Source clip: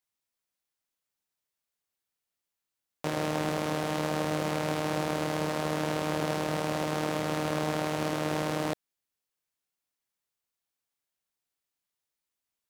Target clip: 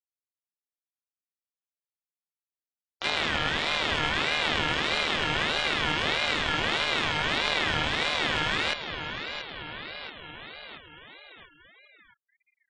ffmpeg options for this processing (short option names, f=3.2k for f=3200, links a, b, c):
-filter_complex "[0:a]bandreject=f=4.2k:w=11,asplit=2[a][b];[b]asetrate=58866,aresample=44100,atempo=0.749154,volume=-6dB[c];[a][c]amix=inputs=2:normalize=0,equalizer=f=400:t=o:w=0.67:g=-8,equalizer=f=1.6k:t=o:w=0.67:g=11,equalizer=f=10k:t=o:w=0.67:g=-7,asplit=2[d][e];[e]aecho=0:1:680|1360|2040|2720|3400|4080:0.316|0.171|0.0922|0.0498|0.0269|0.0145[f];[d][f]amix=inputs=2:normalize=0,asubboost=boost=3.5:cutoff=140,asplit=2[g][h];[h]acompressor=threshold=-43dB:ratio=6,volume=0dB[i];[g][i]amix=inputs=2:normalize=0,afftfilt=real='re*gte(hypot(re,im),0.00794)':imag='im*gte(hypot(re,im),0.00794)':win_size=1024:overlap=0.75,aeval=exprs='val(0)*sin(2*PI*1900*n/s+1900*0.2/1.6*sin(2*PI*1.6*n/s))':c=same,volume=3dB"